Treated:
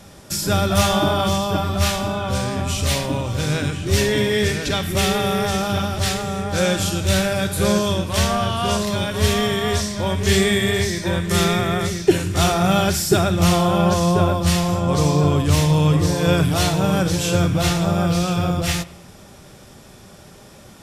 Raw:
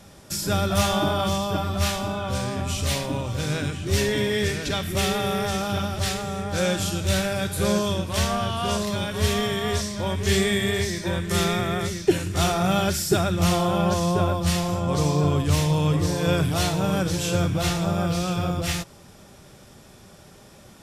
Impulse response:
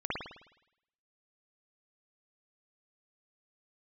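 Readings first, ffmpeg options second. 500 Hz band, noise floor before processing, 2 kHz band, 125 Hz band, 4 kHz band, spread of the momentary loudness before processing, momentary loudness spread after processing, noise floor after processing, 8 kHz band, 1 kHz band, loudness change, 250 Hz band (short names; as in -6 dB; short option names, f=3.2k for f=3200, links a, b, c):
+4.5 dB, -49 dBFS, +4.5 dB, +5.0 dB, +4.5 dB, 5 LU, 6 LU, -44 dBFS, +4.5 dB, +4.5 dB, +4.5 dB, +5.0 dB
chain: -filter_complex "[0:a]asplit=2[a][b];[1:a]atrim=start_sample=2205[c];[b][c]afir=irnorm=-1:irlink=0,volume=-22.5dB[d];[a][d]amix=inputs=2:normalize=0,volume=4dB"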